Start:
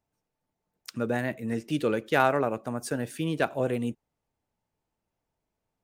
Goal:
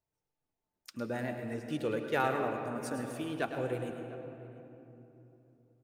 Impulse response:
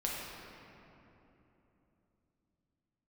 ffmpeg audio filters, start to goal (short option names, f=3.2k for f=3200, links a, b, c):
-filter_complex "[0:a]flanger=delay=1.9:depth=1.6:regen=-49:speed=0.51:shape=triangular,asplit=2[a][b];[b]adelay=699.7,volume=-18dB,highshelf=f=4k:g=-15.7[c];[a][c]amix=inputs=2:normalize=0,asplit=2[d][e];[1:a]atrim=start_sample=2205,adelay=106[f];[e][f]afir=irnorm=-1:irlink=0,volume=-9dB[g];[d][g]amix=inputs=2:normalize=0,volume=-4dB"